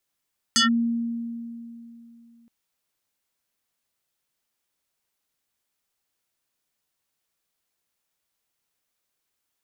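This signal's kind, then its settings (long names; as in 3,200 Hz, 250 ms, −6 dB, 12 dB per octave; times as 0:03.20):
two-operator FM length 1.92 s, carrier 233 Hz, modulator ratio 6.84, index 4.9, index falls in 0.13 s linear, decay 2.99 s, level −15 dB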